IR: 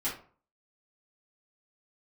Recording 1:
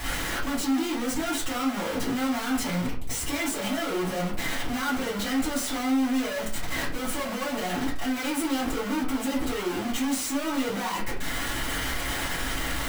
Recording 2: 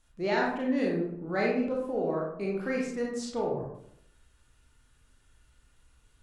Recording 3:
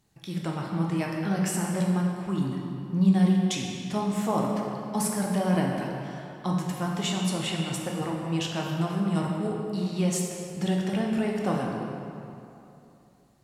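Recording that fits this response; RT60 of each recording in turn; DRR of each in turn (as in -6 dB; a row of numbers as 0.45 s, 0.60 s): 1; 0.45 s, 0.70 s, 2.8 s; -10.0 dB, -3.0 dB, -1.5 dB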